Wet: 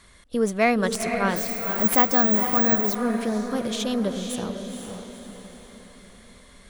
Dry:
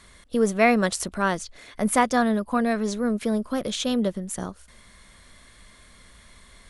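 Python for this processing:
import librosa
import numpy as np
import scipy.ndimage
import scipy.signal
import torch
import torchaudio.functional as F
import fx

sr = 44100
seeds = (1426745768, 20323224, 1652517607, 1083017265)

y = fx.tracing_dist(x, sr, depth_ms=0.03)
y = fx.echo_diffused(y, sr, ms=488, feedback_pct=48, wet_db=-6)
y = fx.resample_bad(y, sr, factor=2, down='none', up='zero_stuff', at=(1.36, 2.95))
y = y * librosa.db_to_amplitude(-1.5)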